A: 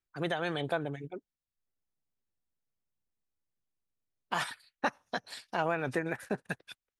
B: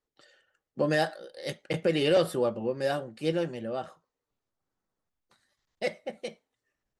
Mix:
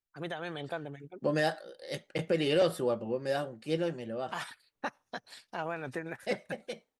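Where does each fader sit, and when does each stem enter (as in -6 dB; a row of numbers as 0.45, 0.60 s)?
-5.5, -3.0 dB; 0.00, 0.45 s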